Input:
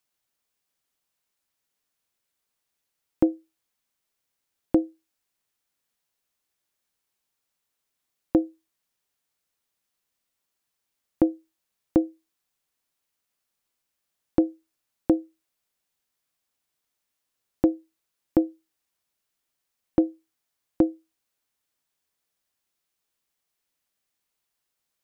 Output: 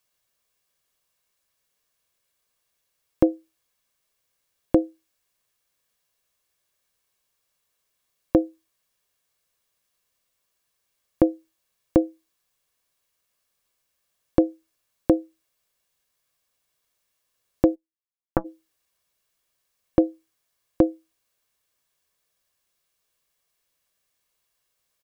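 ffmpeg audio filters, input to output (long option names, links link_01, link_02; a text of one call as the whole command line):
ffmpeg -i in.wav -filter_complex "[0:a]aecho=1:1:1.8:0.38,asplit=3[link_01][link_02][link_03];[link_01]afade=type=out:start_time=17.74:duration=0.02[link_04];[link_02]aeval=exprs='0.447*(cos(1*acos(clip(val(0)/0.447,-1,1)))-cos(1*PI/2))+0.141*(cos(3*acos(clip(val(0)/0.447,-1,1)))-cos(3*PI/2))+0.02*(cos(6*acos(clip(val(0)/0.447,-1,1)))-cos(6*PI/2))':channel_layout=same,afade=type=in:start_time=17.74:duration=0.02,afade=type=out:start_time=18.44:duration=0.02[link_05];[link_03]afade=type=in:start_time=18.44:duration=0.02[link_06];[link_04][link_05][link_06]amix=inputs=3:normalize=0,volume=4.5dB" out.wav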